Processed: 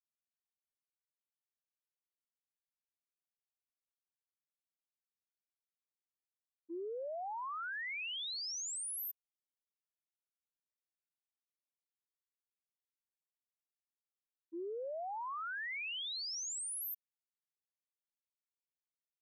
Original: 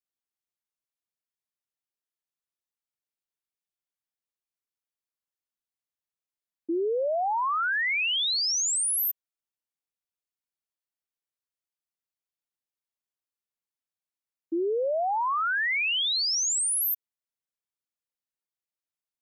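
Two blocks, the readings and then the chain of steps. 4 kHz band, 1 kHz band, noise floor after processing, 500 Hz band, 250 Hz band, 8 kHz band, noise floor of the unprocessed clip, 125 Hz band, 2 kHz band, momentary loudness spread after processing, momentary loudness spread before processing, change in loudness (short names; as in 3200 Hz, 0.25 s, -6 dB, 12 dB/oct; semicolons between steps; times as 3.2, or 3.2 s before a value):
-15.0 dB, -15.0 dB, under -85 dBFS, -15.0 dB, -16.0 dB, -15.0 dB, under -85 dBFS, n/a, -15.0 dB, 7 LU, 7 LU, -14.5 dB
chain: expander -15 dBFS; gain +4 dB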